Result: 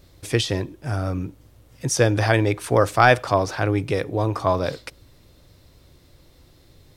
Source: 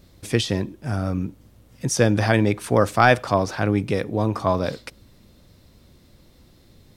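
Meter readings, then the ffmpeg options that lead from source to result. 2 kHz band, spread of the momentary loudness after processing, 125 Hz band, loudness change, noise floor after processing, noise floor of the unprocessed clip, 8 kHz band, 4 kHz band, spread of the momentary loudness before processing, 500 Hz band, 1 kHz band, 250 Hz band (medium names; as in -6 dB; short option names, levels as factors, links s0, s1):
+1.0 dB, 13 LU, 0.0 dB, 0.0 dB, -54 dBFS, -54 dBFS, +1.0 dB, +1.0 dB, 12 LU, +0.5 dB, +1.0 dB, -3.0 dB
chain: -af "equalizer=f=210:t=o:w=0.3:g=-14.5,volume=1.12"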